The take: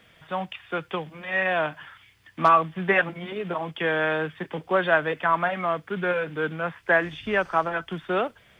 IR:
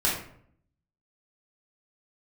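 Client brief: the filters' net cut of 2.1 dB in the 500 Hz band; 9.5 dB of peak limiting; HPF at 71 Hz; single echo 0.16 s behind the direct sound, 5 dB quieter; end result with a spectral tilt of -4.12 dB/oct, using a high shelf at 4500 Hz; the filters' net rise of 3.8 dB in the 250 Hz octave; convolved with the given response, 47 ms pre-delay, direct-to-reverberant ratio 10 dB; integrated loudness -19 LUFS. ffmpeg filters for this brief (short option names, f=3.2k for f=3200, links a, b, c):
-filter_complex "[0:a]highpass=71,equalizer=f=250:t=o:g=8.5,equalizer=f=500:t=o:g=-5,highshelf=f=4.5k:g=3,alimiter=limit=-17dB:level=0:latency=1,aecho=1:1:160:0.562,asplit=2[a][b];[1:a]atrim=start_sample=2205,adelay=47[c];[b][c]afir=irnorm=-1:irlink=0,volume=-21.5dB[d];[a][d]amix=inputs=2:normalize=0,volume=8dB"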